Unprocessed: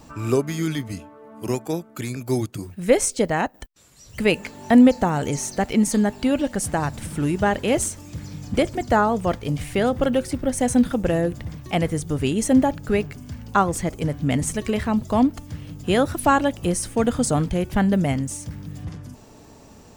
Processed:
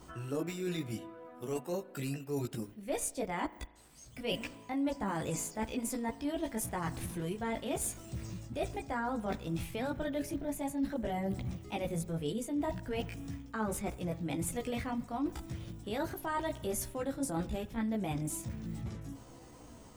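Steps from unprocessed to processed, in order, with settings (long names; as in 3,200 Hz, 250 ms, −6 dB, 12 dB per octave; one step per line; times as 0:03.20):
multi-voice chorus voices 4, 0.34 Hz, delay 18 ms, depth 2.7 ms
reversed playback
downward compressor 6 to 1, threshold −29 dBFS, peak gain reduction 16 dB
reversed playback
pitch shifter +2 semitones
spring reverb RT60 1.2 s, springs 36 ms, chirp 50 ms, DRR 17.5 dB
level −3.5 dB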